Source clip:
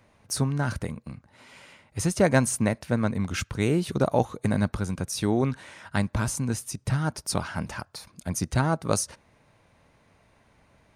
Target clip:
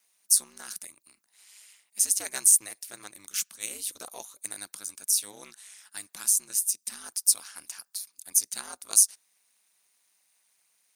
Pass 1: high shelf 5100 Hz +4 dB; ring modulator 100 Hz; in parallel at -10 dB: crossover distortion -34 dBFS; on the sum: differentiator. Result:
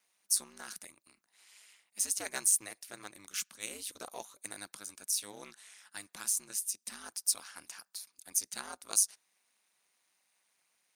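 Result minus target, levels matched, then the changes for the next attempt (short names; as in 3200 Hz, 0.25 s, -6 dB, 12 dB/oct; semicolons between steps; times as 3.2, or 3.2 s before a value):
4000 Hz band +3.0 dB
change: high shelf 5100 Hz +14.5 dB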